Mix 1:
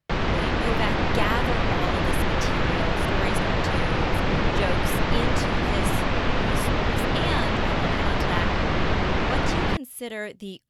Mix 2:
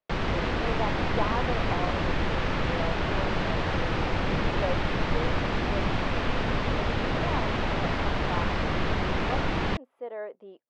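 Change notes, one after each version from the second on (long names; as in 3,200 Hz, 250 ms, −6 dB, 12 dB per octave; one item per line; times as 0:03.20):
speech: add flat-topped band-pass 710 Hz, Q 1
background −4.0 dB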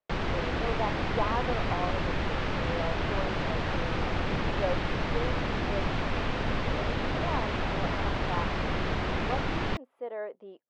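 reverb: off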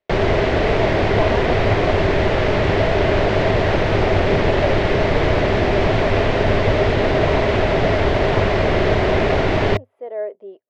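background +9.5 dB
master: add thirty-one-band graphic EQ 100 Hz +8 dB, 400 Hz +11 dB, 630 Hz +11 dB, 1,250 Hz −3 dB, 2,000 Hz +4 dB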